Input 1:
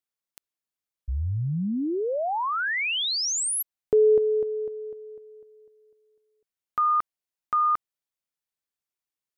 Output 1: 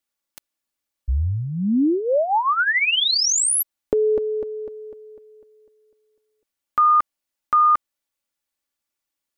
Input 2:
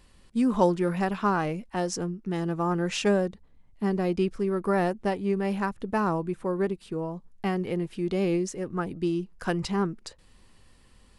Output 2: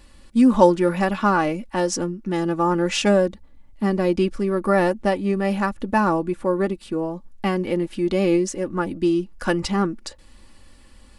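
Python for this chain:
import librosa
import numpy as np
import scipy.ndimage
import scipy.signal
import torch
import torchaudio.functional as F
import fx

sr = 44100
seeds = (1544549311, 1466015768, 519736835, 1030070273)

y = x + 0.55 * np.pad(x, (int(3.5 * sr / 1000.0), 0))[:len(x)]
y = F.gain(torch.from_numpy(y), 6.0).numpy()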